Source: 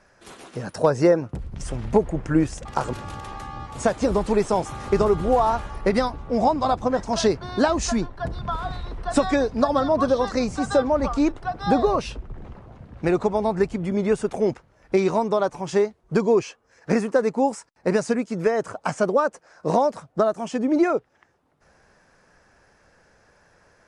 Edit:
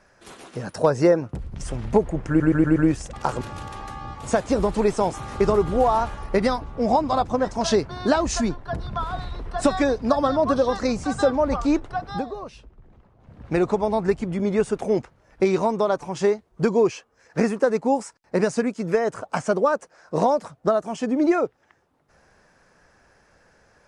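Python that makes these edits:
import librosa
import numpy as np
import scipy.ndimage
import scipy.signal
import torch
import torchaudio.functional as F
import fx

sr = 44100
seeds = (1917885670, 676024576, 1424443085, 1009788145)

y = fx.edit(x, sr, fx.stutter(start_s=2.28, slice_s=0.12, count=5),
    fx.fade_down_up(start_s=11.55, length_s=1.38, db=-13.5, fade_s=0.22), tone=tone)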